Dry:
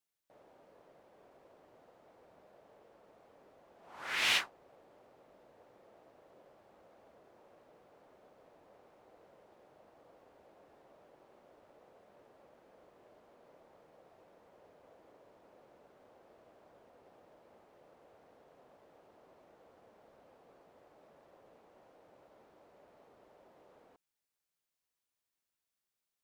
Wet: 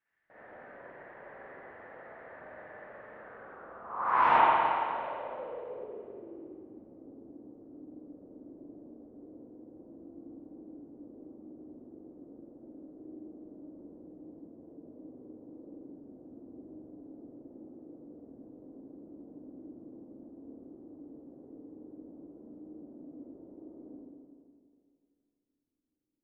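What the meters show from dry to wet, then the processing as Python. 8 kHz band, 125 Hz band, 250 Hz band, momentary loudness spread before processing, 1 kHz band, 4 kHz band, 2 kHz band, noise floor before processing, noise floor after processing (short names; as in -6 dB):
under -25 dB, +11.5 dB, +20.0 dB, 18 LU, +21.0 dB, -11.5 dB, +1.5 dB, under -85 dBFS, -79 dBFS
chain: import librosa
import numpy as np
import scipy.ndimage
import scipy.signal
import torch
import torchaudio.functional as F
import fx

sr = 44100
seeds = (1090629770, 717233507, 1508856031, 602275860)

y = fx.filter_sweep_lowpass(x, sr, from_hz=1800.0, to_hz=290.0, start_s=3.07, end_s=6.52, q=6.7)
y = fx.rev_spring(y, sr, rt60_s=2.3, pass_ms=(42, 51, 55), chirp_ms=55, drr_db=-8.5)
y = y * 10.0 ** (1.5 / 20.0)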